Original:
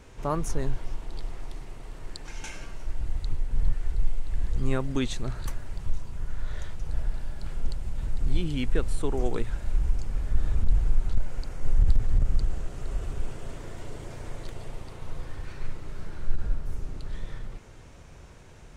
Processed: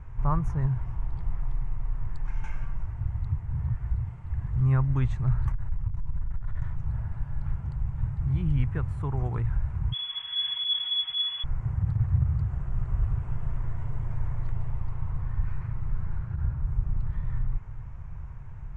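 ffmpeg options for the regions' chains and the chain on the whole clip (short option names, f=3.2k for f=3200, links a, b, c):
-filter_complex "[0:a]asettb=1/sr,asplit=3[a][b][c];[a]atrim=end=5.524[d];[b]atrim=start=5.52:end=6.62,asetpts=PTS-STARTPTS,afade=t=in:d=0.004:c=qsin,afade=t=out:st=1.096:d=0.004:c=qsin,aeval=exprs='(tanh(15.8*val(0)+0.75)-tanh(0.75))/15.8':c=same,acompressor=mode=upward:threshold=-36dB:ratio=2.5:attack=3.2:release=140:knee=2.83:detection=peak[e];[c]atrim=start=6.616[f];[d][e]acrossfade=d=0.004:c1=hsin:c2=qsin[g];[g][f]acrossfade=d=0.004:c1=qsin:c2=hsin,asettb=1/sr,asplit=3[h][i][j];[h]atrim=end=9.924[k];[i]atrim=start=9.92:end=11.44,asetpts=PTS-STARTPTS,afade=t=in:d=0.004:c=qsin,afade=t=out:st=1.516:d=0.004:c=qsin,aecho=1:1:6.1:0.52,atrim=end_sample=67032,acontrast=22,lowpass=f=2.9k:t=q:w=0.5098,lowpass=f=2.9k:t=q:w=0.6013,lowpass=f=2.9k:t=q:w=0.9,lowpass=f=2.9k:t=q:w=2.563,afreqshift=-3400[l];[j]atrim=start=11.436[m];[k][l]acrossfade=d=0.004:c1=hsin:c2=qsin[n];[n][m]acrossfade=d=0.004:c1=qsin:c2=hsin,aemphasis=mode=reproduction:type=riaa,afftfilt=real='re*lt(hypot(re,im),3.55)':imag='im*lt(hypot(re,im),3.55)':win_size=1024:overlap=0.75,equalizer=f=125:t=o:w=1:g=9,equalizer=f=250:t=o:w=1:g=-9,equalizer=f=500:t=o:w=1:g=-7,equalizer=f=1k:t=o:w=1:g=10,equalizer=f=2k:t=o:w=1:g=5,equalizer=f=4k:t=o:w=1:g=-9,volume=-7dB"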